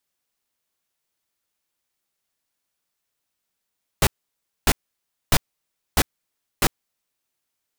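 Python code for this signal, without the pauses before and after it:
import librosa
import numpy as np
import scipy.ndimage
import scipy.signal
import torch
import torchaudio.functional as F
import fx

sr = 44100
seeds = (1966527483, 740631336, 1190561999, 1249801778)

y = fx.noise_burst(sr, seeds[0], colour='pink', on_s=0.05, off_s=0.6, bursts=5, level_db=-16.0)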